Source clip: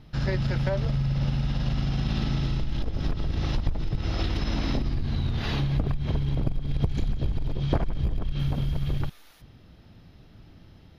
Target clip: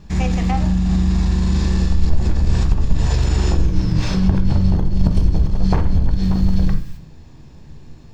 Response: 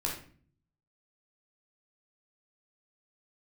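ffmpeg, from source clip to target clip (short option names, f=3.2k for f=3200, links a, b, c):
-filter_complex "[0:a]asetrate=59535,aresample=44100,asplit=2[a][b];[1:a]atrim=start_sample=2205,lowshelf=f=110:g=6.5[c];[b][c]afir=irnorm=-1:irlink=0,volume=-4.5dB[d];[a][d]amix=inputs=2:normalize=0"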